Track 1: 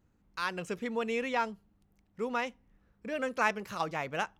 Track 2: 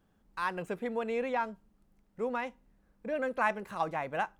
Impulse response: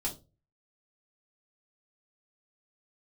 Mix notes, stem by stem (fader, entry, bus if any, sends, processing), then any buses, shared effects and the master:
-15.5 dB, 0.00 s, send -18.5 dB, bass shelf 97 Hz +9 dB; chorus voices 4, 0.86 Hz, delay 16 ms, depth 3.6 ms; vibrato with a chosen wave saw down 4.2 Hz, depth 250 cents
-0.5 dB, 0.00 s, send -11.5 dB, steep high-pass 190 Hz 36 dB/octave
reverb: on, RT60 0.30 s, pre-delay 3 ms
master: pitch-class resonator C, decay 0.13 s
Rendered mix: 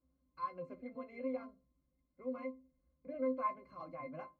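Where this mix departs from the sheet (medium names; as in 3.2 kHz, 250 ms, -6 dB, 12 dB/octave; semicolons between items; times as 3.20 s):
stem 1 -15.5 dB -> -8.5 dB; stem 2: polarity flipped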